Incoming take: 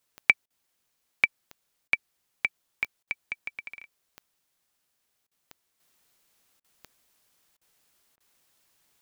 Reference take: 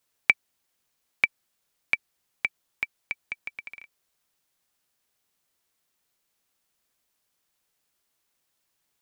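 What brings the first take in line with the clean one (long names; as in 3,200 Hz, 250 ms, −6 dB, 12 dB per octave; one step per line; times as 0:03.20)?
click removal
repair the gap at 0:00.46/0:01.88/0:03.03/0:05.27/0:06.60/0:07.57/0:08.16, 42 ms
level correction −7.5 dB, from 0:05.80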